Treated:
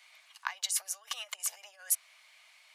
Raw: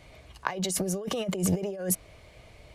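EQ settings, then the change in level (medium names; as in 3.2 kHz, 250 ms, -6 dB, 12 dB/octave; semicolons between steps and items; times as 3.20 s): Bessel high-pass 1.5 kHz, order 8; 0.0 dB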